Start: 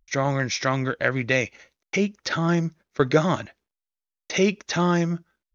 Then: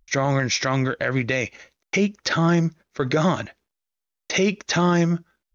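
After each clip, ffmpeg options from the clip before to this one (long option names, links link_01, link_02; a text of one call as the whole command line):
ffmpeg -i in.wav -af "alimiter=limit=-15.5dB:level=0:latency=1:release=43,volume=4.5dB" out.wav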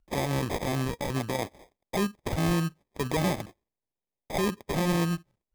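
ffmpeg -i in.wav -af "acrusher=samples=31:mix=1:aa=0.000001,volume=-7dB" out.wav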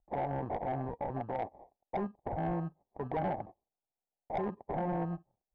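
ffmpeg -i in.wav -af "lowpass=frequency=770:width_type=q:width=4.6,asoftclip=type=tanh:threshold=-18dB,volume=-8.5dB" out.wav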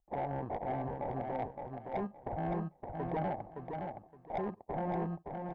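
ffmpeg -i in.wav -af "aecho=1:1:567|1134|1701:0.562|0.124|0.0272,volume=-2dB" out.wav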